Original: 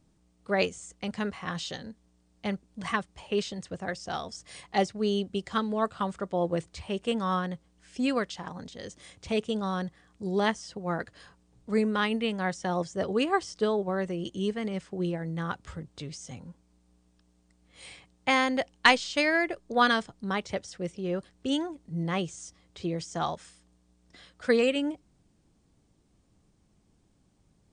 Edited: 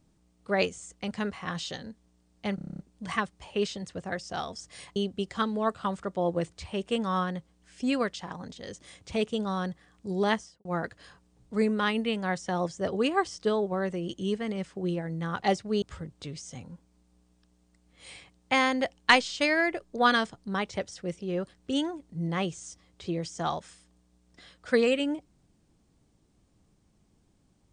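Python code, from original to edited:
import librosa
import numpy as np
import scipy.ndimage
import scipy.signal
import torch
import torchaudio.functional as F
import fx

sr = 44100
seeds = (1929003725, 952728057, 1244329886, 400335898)

y = fx.studio_fade_out(x, sr, start_s=10.51, length_s=0.3)
y = fx.edit(y, sr, fx.stutter(start_s=2.55, slice_s=0.03, count=9),
    fx.move(start_s=4.72, length_s=0.4, to_s=15.58), tone=tone)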